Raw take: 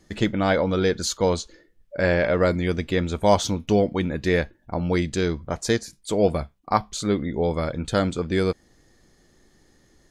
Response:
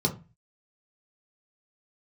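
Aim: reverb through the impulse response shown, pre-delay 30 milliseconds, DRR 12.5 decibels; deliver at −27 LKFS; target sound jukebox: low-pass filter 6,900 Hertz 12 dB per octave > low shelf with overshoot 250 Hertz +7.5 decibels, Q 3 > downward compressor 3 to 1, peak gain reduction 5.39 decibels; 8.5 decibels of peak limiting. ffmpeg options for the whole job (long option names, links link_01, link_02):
-filter_complex "[0:a]alimiter=limit=-13.5dB:level=0:latency=1,asplit=2[link_01][link_02];[1:a]atrim=start_sample=2205,adelay=30[link_03];[link_02][link_03]afir=irnorm=-1:irlink=0,volume=-21.5dB[link_04];[link_01][link_04]amix=inputs=2:normalize=0,lowpass=6900,lowshelf=frequency=250:width_type=q:width=3:gain=7.5,acompressor=threshold=-14dB:ratio=3,volume=-7.5dB"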